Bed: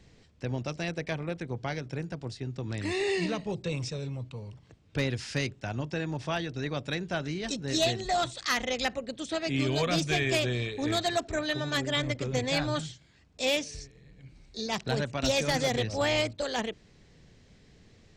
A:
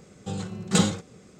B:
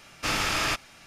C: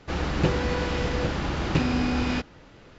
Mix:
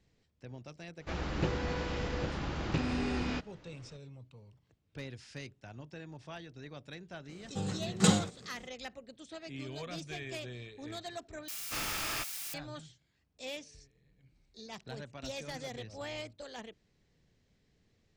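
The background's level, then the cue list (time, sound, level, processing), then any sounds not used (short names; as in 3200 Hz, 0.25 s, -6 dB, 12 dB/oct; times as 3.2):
bed -14.5 dB
0.99 add C -9 dB
7.29 add A -4 dB
11.48 replace with B -11 dB + switching spikes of -22 dBFS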